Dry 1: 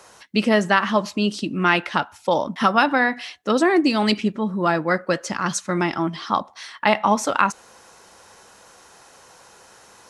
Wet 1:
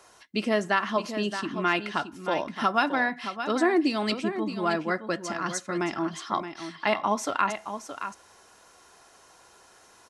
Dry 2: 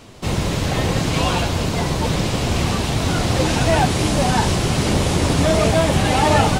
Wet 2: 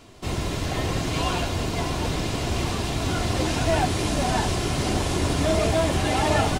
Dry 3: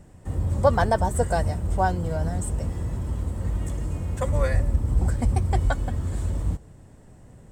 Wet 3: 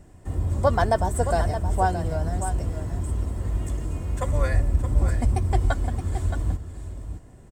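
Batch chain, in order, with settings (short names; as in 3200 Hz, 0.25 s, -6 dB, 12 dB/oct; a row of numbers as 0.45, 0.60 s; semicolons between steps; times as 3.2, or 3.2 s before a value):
comb 2.9 ms, depth 31%; on a send: echo 0.621 s -9.5 dB; on the sum: normalise peaks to -9 dBFS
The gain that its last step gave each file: -7.5, -6.5, -0.5 dB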